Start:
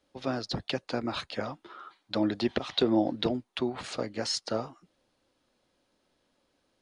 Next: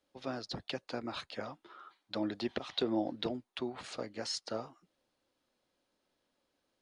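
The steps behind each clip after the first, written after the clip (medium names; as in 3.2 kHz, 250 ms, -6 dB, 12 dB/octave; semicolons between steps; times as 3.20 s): bass shelf 200 Hz -4.5 dB; trim -6.5 dB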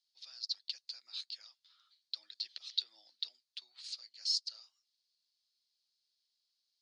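ladder band-pass 5 kHz, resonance 65%; trim +10 dB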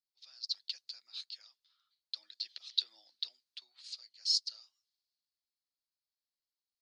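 three bands expanded up and down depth 40%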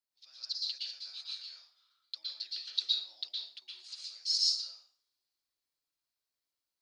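plate-style reverb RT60 0.51 s, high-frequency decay 0.8×, pre-delay 105 ms, DRR -5 dB; trim -1.5 dB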